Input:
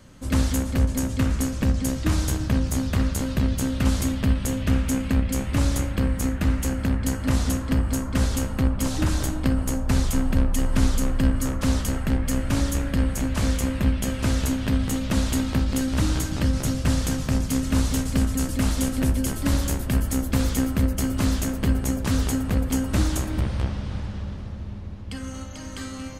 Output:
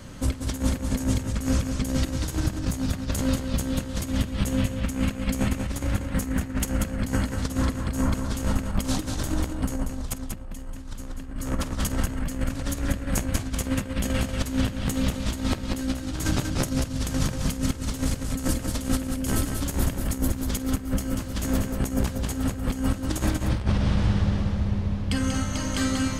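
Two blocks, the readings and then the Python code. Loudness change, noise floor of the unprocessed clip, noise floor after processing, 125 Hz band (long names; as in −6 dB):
−3.0 dB, −34 dBFS, −35 dBFS, −3.0 dB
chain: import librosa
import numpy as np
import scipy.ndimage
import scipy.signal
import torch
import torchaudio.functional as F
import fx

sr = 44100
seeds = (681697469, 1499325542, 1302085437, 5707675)

p1 = fx.over_compress(x, sr, threshold_db=-28.0, ratio=-0.5)
p2 = p1 + fx.echo_multitap(p1, sr, ms=(49, 188), db=(-17.5, -5.5), dry=0)
y = F.gain(torch.from_numpy(p2), 2.0).numpy()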